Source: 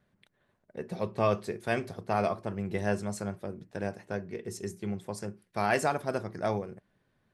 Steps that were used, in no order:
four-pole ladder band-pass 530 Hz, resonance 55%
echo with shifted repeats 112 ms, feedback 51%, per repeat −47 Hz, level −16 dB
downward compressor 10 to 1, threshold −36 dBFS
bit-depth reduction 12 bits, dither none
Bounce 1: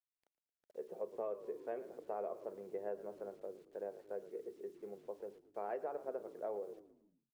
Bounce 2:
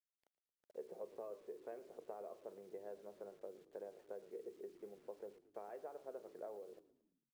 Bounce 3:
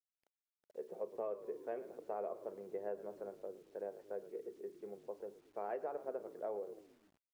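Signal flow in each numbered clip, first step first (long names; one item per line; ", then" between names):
four-pole ladder band-pass, then bit-depth reduction, then echo with shifted repeats, then downward compressor
downward compressor, then four-pole ladder band-pass, then bit-depth reduction, then echo with shifted repeats
four-pole ladder band-pass, then echo with shifted repeats, then bit-depth reduction, then downward compressor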